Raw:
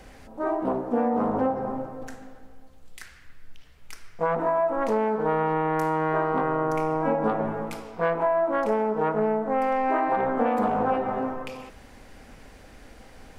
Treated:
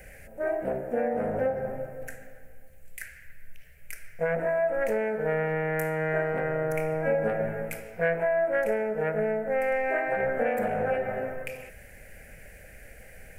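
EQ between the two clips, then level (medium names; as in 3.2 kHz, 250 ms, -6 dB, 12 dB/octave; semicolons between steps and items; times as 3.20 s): FFT filter 170 Hz 0 dB, 270 Hz -13 dB, 590 Hz +3 dB, 1.1 kHz -21 dB, 1.6 kHz +5 dB, 2.4 kHz +5 dB, 3.5 kHz -12 dB, 5 kHz -8 dB, 8.8 kHz +5 dB, 13 kHz +11 dB; 0.0 dB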